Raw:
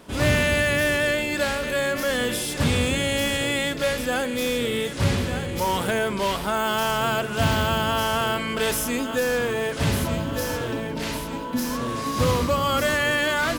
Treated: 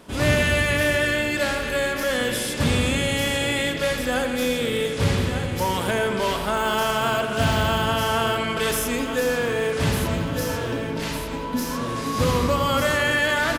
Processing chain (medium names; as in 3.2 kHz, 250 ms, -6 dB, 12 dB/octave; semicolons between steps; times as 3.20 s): on a send: feedback echo behind a low-pass 84 ms, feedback 76%, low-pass 4 kHz, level -9 dB; on the sum: resampled via 32 kHz